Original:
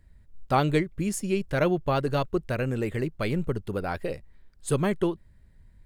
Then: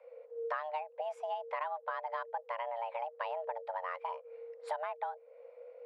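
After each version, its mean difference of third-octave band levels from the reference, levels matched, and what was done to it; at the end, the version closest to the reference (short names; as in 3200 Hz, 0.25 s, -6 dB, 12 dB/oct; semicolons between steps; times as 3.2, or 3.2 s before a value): 17.5 dB: LPF 1600 Hz 12 dB/oct; low shelf 330 Hz -4 dB; frequency shift +460 Hz; compressor 6:1, threshold -41 dBFS, peak gain reduction 21 dB; gain +5 dB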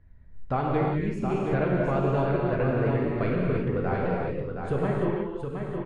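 11.0 dB: LPF 1900 Hz 12 dB/oct; compressor 3:1, threshold -27 dBFS, peak gain reduction 7.5 dB; on a send: echo 0.719 s -6 dB; on the sum: non-linear reverb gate 0.37 s flat, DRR -3 dB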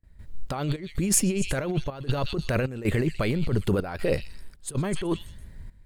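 7.5 dB: delay with a stepping band-pass 0.124 s, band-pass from 3800 Hz, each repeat 0.7 oct, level -9 dB; negative-ratio compressor -32 dBFS, ratio -1; gate with hold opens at -45 dBFS; step gate ".xxx.xxxxx" 79 bpm -12 dB; gain +7.5 dB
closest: third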